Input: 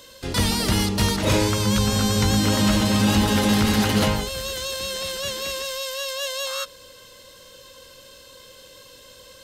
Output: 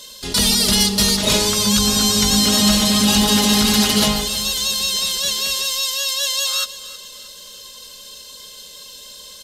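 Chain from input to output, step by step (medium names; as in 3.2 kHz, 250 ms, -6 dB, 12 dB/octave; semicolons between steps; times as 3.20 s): high-order bell 6.5 kHz +10 dB 2.4 oct; comb 4.8 ms, depth 66%; feedback delay 317 ms, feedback 43%, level -16 dB; trim -1 dB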